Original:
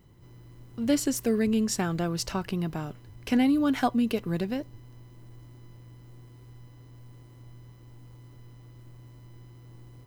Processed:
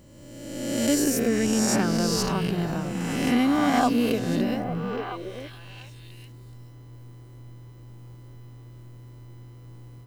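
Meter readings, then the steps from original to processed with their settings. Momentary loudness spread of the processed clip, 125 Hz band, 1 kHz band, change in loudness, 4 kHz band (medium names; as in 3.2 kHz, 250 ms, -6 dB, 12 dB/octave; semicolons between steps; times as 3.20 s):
18 LU, +4.5 dB, +6.0 dB, +3.0 dB, +6.5 dB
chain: reverse spectral sustain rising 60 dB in 1.45 s; repeats whose band climbs or falls 426 ms, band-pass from 170 Hz, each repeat 1.4 oct, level -1.5 dB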